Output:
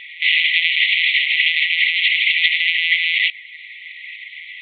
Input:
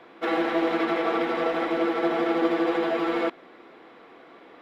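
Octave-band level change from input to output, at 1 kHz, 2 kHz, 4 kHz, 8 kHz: under -40 dB, +18.0 dB, +23.0 dB, no reading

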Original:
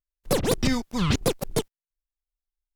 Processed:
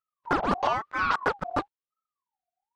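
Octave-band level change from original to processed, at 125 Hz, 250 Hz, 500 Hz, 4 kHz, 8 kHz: -13.0 dB, -8.0 dB, -4.5 dB, -9.0 dB, under -20 dB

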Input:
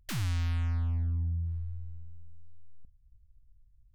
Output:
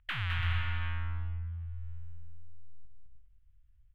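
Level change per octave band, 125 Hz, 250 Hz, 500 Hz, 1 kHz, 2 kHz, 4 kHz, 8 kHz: -4.0 dB, -13.0 dB, -5.0 dB, +6.0 dB, +9.5 dB, +4.5 dB, under -20 dB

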